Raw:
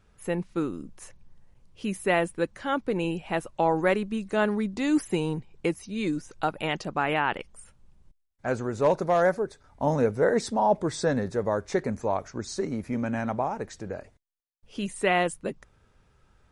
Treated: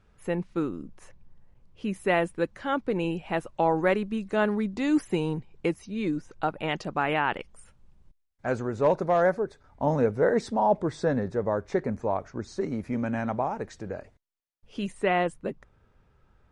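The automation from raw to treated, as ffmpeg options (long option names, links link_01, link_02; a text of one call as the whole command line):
ffmpeg -i in.wav -af "asetnsamples=nb_out_samples=441:pad=0,asendcmd='0.69 lowpass f 2300;1.96 lowpass f 4200;5.89 lowpass f 2200;6.68 lowpass f 5400;8.62 lowpass f 2800;10.82 lowpass f 1800;12.61 lowpass f 4300;14.92 lowpass f 1900',lowpass=frequency=3900:poles=1" out.wav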